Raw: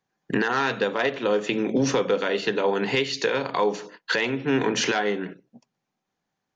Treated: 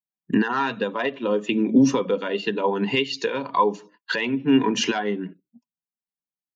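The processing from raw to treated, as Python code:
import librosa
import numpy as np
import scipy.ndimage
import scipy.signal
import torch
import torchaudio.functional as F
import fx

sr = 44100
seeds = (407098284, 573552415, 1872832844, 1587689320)

y = fx.bin_expand(x, sr, power=1.5)
y = fx.small_body(y, sr, hz=(240.0, 1000.0, 2800.0), ring_ms=30, db=11)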